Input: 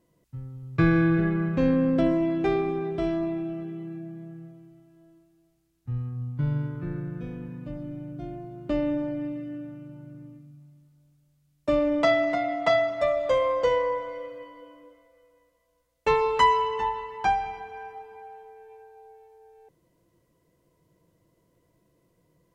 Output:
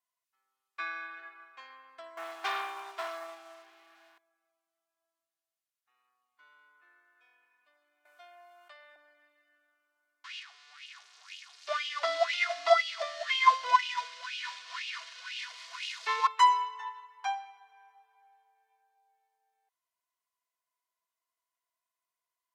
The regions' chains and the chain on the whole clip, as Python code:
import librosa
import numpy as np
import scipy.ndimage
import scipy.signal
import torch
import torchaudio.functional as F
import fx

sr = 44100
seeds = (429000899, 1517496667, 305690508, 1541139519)

y = fx.chain(x, sr, fx.low_shelf(hz=210.0, db=8.5),
    fx.notch(hz=300.0, q=5.8),
    fx.leveller(passes=3), at=(2.17, 4.18))
y = fx.chain(y, sr, fx.highpass(hz=410.0, slope=24),
    fx.env_flatten(amount_pct=70), at=(8.05, 8.96))
y = fx.chain(y, sr, fx.crossing_spikes(level_db=-16.5),
    fx.filter_lfo_highpass(shape='sine', hz=2.0, low_hz=270.0, high_hz=2900.0, q=6.2),
    fx.lowpass(hz=4900.0, slope=24), at=(10.24, 16.27))
y = scipy.signal.sosfilt(scipy.signal.butter(4, 950.0, 'highpass', fs=sr, output='sos'), y)
y = y + 0.61 * np.pad(y, (int(2.8 * sr / 1000.0), 0))[:len(y)]
y = fx.upward_expand(y, sr, threshold_db=-43.0, expansion=1.5)